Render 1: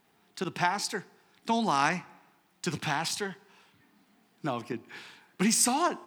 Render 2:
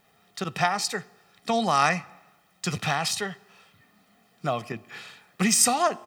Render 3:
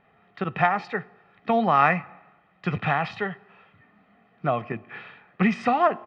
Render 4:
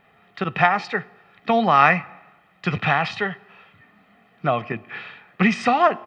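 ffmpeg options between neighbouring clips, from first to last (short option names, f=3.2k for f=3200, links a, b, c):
-af "aecho=1:1:1.6:0.62,volume=3.5dB"
-af "lowpass=f=2.5k:w=0.5412,lowpass=f=2.5k:w=1.3066,volume=3dB"
-af "highshelf=f=2.9k:g=11,volume=2.5dB"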